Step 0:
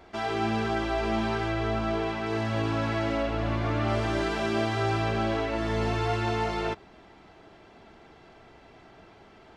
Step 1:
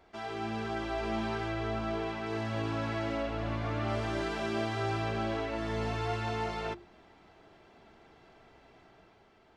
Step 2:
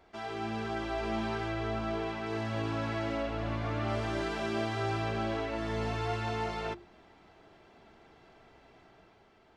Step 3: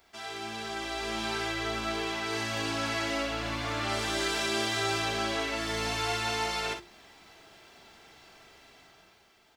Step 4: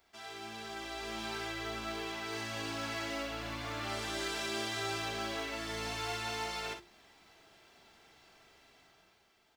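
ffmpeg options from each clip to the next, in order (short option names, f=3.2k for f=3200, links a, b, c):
-af "bandreject=f=50:t=h:w=6,bandreject=f=100:t=h:w=6,bandreject=f=150:t=h:w=6,bandreject=f=200:t=h:w=6,bandreject=f=250:t=h:w=6,bandreject=f=300:t=h:w=6,bandreject=f=350:t=h:w=6,dynaudnorm=f=160:g=9:m=3.5dB,volume=-9dB"
-af anull
-af "aecho=1:1:43|58:0.335|0.355,dynaudnorm=f=260:g=9:m=5dB,crystalizer=i=9:c=0,volume=-7.5dB"
-af "acrusher=bits=6:mode=log:mix=0:aa=0.000001,volume=-7dB"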